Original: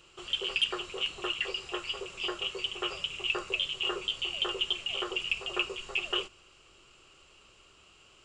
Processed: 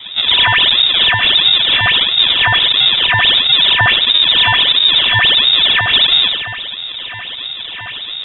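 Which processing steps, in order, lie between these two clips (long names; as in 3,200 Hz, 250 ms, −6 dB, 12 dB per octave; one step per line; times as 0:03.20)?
every partial snapped to a pitch grid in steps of 6 semitones
high-pass filter 61 Hz 24 dB per octave
parametric band 290 Hz +10 dB 2.5 octaves
in parallel at +1 dB: downward compressor 6 to 1, threshold −33 dBFS, peak gain reduction 15.5 dB
on the sum: transient designer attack +5 dB, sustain 0 dB
reversed playback
upward compression, threshold −35 dBFS
reversed playback
four-comb reverb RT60 0.82 s, DRR 7 dB
pitch shifter −4.5 semitones
sample-and-hold swept by an LFO 38×, swing 160% 1.5 Hz
voice inversion scrambler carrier 3,700 Hz
boost into a limiter +13.5 dB
level −1 dB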